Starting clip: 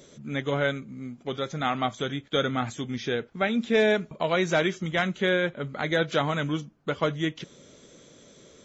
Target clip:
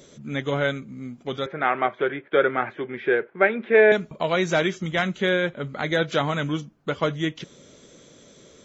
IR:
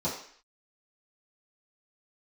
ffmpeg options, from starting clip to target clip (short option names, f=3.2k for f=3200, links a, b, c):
-filter_complex "[0:a]asettb=1/sr,asplit=3[a][b][c];[a]atrim=end=1.464[d];[b]atrim=start=1.46:end=3.92,asetpts=PTS-STARTPTS,afade=t=in:d=0.004:c=qsin,afade=t=out:st=2.456:d=0.004:c=qsin,highpass=230,equalizer=f=250:t=q:w=4:g=-7,equalizer=f=380:t=q:w=4:g=10,equalizer=f=570:t=q:w=4:g=5,equalizer=f=950:t=q:w=4:g=4,equalizer=f=1.6k:t=q:w=4:g=8,equalizer=f=2.2k:t=q:w=4:g=5,lowpass=f=2.5k:w=0.5412,lowpass=f=2.5k:w=1.3066[e];[c]atrim=start=3.916[f];[d][e]acrossfade=d=0.004:c1=hsin:c2=qsin[g];[g][f]acrossfade=d=0.004:c1=qsin:c2=hsin,volume=2dB"